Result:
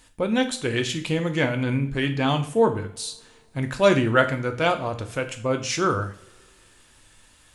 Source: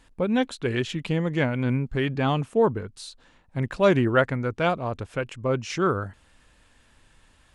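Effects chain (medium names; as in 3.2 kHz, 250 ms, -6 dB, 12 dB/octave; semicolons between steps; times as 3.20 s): treble shelf 4.1 kHz +12 dB; hum notches 60/120/180/240 Hz; two-slope reverb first 0.43 s, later 2.7 s, from -28 dB, DRR 5.5 dB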